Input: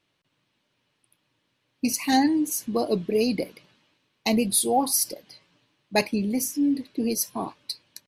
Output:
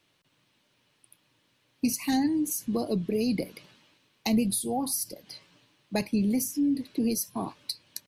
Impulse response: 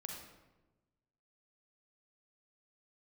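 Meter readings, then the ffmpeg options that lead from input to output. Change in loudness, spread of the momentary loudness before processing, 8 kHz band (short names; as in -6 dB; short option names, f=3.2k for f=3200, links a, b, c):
-4.0 dB, 12 LU, -5.5 dB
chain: -filter_complex "[0:a]highshelf=f=6k:g=6,acrossover=split=220[a][b];[b]acompressor=threshold=-34dB:ratio=4[c];[a][c]amix=inputs=2:normalize=0,volume=3dB"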